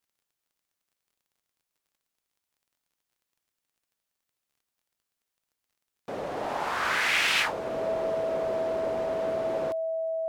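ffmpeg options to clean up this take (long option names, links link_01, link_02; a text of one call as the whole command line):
ffmpeg -i in.wav -af "adeclick=threshold=4,bandreject=frequency=650:width=30" out.wav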